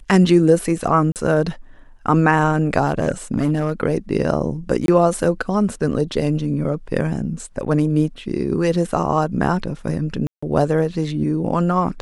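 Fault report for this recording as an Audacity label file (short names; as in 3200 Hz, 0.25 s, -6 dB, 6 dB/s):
1.120000	1.160000	gap 38 ms
2.840000	3.720000	clipped -12 dBFS
4.860000	4.880000	gap 22 ms
10.270000	10.430000	gap 0.155 s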